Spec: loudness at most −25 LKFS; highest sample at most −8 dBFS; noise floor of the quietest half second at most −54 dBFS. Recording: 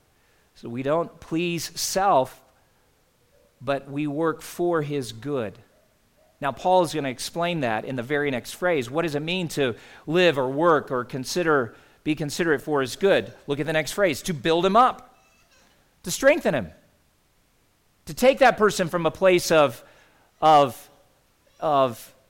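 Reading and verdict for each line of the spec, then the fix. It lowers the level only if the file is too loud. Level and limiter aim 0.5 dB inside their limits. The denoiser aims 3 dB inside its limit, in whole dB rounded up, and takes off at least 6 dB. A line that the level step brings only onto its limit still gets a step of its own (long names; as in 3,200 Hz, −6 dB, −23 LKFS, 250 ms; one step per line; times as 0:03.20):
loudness −23.0 LKFS: out of spec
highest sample −6.5 dBFS: out of spec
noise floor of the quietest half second −64 dBFS: in spec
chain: level −2.5 dB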